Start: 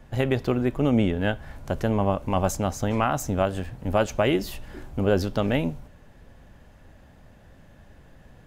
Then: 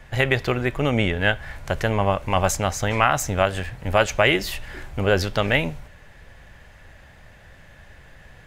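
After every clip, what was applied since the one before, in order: ten-band EQ 250 Hz -8 dB, 2000 Hz +9 dB, 4000 Hz +3 dB, 8000 Hz +3 dB; gain +3.5 dB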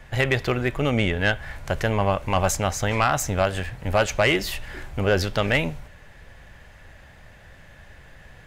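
soft clip -10 dBFS, distortion -17 dB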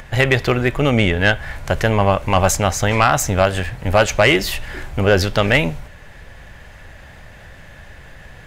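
upward compressor, threshold -42 dBFS; gain +6.5 dB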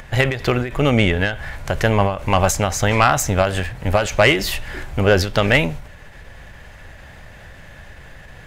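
ending taper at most 110 dB/s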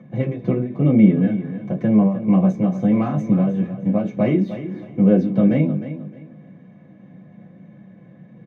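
band-pass 390 Hz, Q 0.94; feedback echo 0.308 s, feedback 27%, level -12 dB; reverb, pre-delay 3 ms, DRR -3.5 dB; gain -14.5 dB

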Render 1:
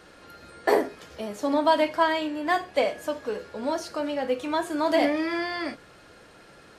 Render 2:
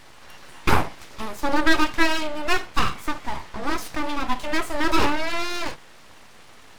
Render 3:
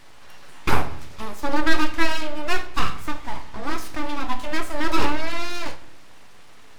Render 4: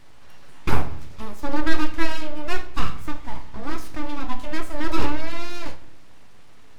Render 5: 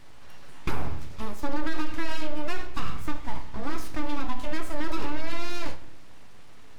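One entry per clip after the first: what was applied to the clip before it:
full-wave rectifier; gain +5.5 dB
shoebox room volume 200 m³, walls mixed, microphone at 0.32 m; gain -2.5 dB
low shelf 350 Hz +8 dB; gain -5.5 dB
limiter -13 dBFS, peak gain reduction 11 dB

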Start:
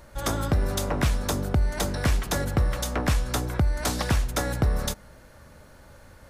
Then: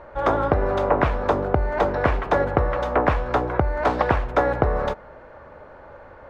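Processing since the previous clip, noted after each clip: EQ curve 210 Hz 0 dB, 430 Hz +12 dB, 950 Hz +13 dB, 2500 Hz +2 dB, 9800 Hz -29 dB; gain -1 dB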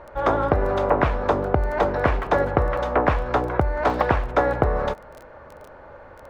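crackle 11/s -32 dBFS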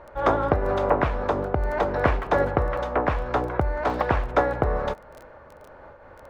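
noise-modulated level, depth 55%

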